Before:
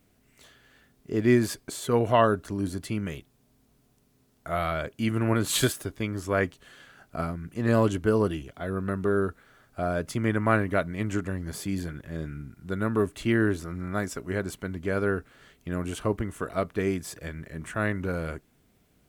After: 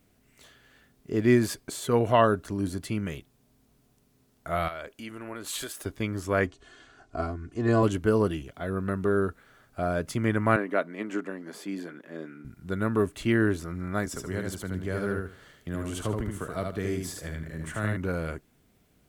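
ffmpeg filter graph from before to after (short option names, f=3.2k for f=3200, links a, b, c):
-filter_complex "[0:a]asettb=1/sr,asplit=3[a][b][c];[a]atrim=end=4.684[d];[b]atrim=start=4.68:end=5.86,asetpts=PTS-STARTPTS,afade=t=in:d=0.004:c=qsin,afade=t=out:st=1.176:d=0.004:c=qsin,acompressor=threshold=-34dB:ratio=2.5:attack=3.2:release=140:knee=1:detection=peak,equalizer=f=120:t=o:w=1.8:g=-14[e];[c]atrim=start=5.856[f];[d][e]acrossfade=d=0.004:c1=hsin:c2=qsin[g];[g][f]acrossfade=d=0.004:c1=qsin:c2=hsin,asettb=1/sr,asplit=3[h][i][j];[h]atrim=end=6.464[k];[i]atrim=start=6.46:end=7.83,asetpts=PTS-STARTPTS,afade=t=in:d=0.004:c=qsin,afade=t=out:st=1.366:d=0.004:c=qsin,lowpass=f=7.7k:w=0.5412,lowpass=f=7.7k:w=1.3066,equalizer=f=2.5k:t=o:w=1.9:g=-5.5,aecho=1:1:2.8:0.71,atrim=end_sample=60417[l];[j]atrim=start=7.826[m];[k][l]acrossfade=d=0.004:c1=hsin:c2=qsin[n];[n][m]acrossfade=d=0.004:c1=qsin:c2=hsin,asettb=1/sr,asplit=3[o][p][q];[o]atrim=end=10.564[r];[p]atrim=start=10.56:end=12.45,asetpts=PTS-STARTPTS,afade=t=in:d=0.004:c=qsin,afade=t=out:st=1.886:d=0.004:c=qsin,highpass=f=240:w=0.5412,highpass=f=240:w=1.3066,highshelf=f=4.6k:g=-11.5[s];[q]atrim=start=12.446[t];[r][s]acrossfade=d=0.004:c1=hsin:c2=qsin[u];[u][t]acrossfade=d=0.004:c1=qsin:c2=hsin,asettb=1/sr,asplit=3[v][w][x];[v]atrim=end=14.064[y];[w]atrim=start=14.06:end=17.97,asetpts=PTS-STARTPTS,afade=t=in:d=0.004:c=qsin,afade=t=out:st=3.906:d=0.004:c=qsin,equalizer=f=2.5k:t=o:w=0.23:g=-5.5,acrossover=split=170|3000[z][aa][ab];[aa]acompressor=threshold=-38dB:ratio=1.5:attack=3.2:release=140:knee=2.83:detection=peak[ac];[z][ac][ab]amix=inputs=3:normalize=0,aecho=1:1:75|150|225:0.668|0.147|0.0323,atrim=end_sample=172431[ad];[x]atrim=start=17.966[ae];[y][ad]acrossfade=d=0.004:c1=hsin:c2=qsin[af];[af][ae]acrossfade=d=0.004:c1=qsin:c2=hsin"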